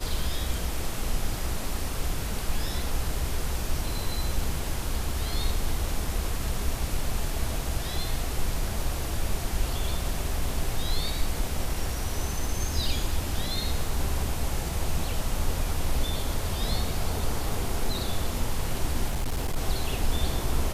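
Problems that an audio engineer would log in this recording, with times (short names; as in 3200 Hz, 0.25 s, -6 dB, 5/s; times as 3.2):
19.08–19.57 clipped -23.5 dBFS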